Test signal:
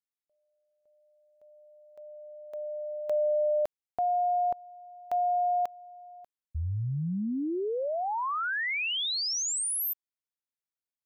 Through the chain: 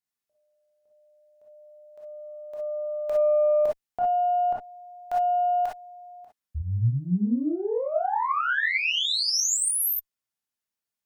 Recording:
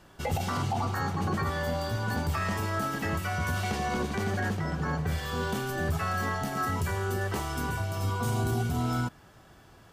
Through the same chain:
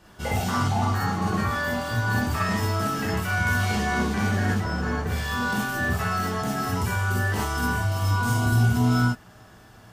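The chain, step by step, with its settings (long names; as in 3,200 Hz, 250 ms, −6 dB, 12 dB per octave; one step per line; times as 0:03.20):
harmonic generator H 4 −27 dB, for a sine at −19 dBFS
reverb whose tail is shaped and stops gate 80 ms rising, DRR −3.5 dB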